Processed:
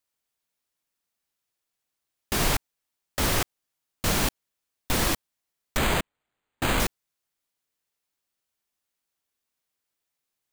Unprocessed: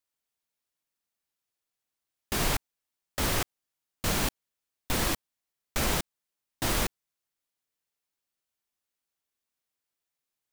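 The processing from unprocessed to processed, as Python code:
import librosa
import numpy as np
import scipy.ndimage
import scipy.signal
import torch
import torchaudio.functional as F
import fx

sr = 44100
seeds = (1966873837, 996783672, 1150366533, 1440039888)

y = fx.resample_bad(x, sr, factor=8, down='none', up='hold', at=(5.77, 6.8))
y = F.gain(torch.from_numpy(y), 3.5).numpy()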